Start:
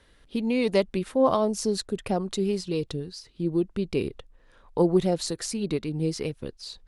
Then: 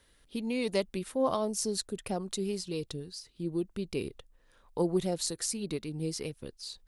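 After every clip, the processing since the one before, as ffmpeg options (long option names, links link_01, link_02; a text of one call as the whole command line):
ffmpeg -i in.wav -af "aemphasis=mode=production:type=50kf,volume=-7.5dB" out.wav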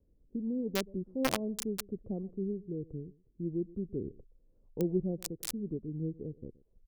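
ffmpeg -i in.wav -filter_complex "[0:a]aecho=1:1:122:0.0891,acrossover=split=470[link_01][link_02];[link_02]acrusher=bits=3:mix=0:aa=0.000001[link_03];[link_01][link_03]amix=inputs=2:normalize=0" out.wav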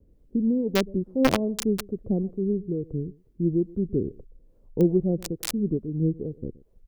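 ffmpeg -i in.wav -filter_complex "[0:a]asplit=2[link_01][link_02];[link_02]adynamicsmooth=sensitivity=2.5:basefreq=3100,volume=-1.5dB[link_03];[link_01][link_03]amix=inputs=2:normalize=0,acrossover=split=510[link_04][link_05];[link_04]aeval=exprs='val(0)*(1-0.5/2+0.5/2*cos(2*PI*2.3*n/s))':channel_layout=same[link_06];[link_05]aeval=exprs='val(0)*(1-0.5/2-0.5/2*cos(2*PI*2.3*n/s))':channel_layout=same[link_07];[link_06][link_07]amix=inputs=2:normalize=0,volume=7.5dB" out.wav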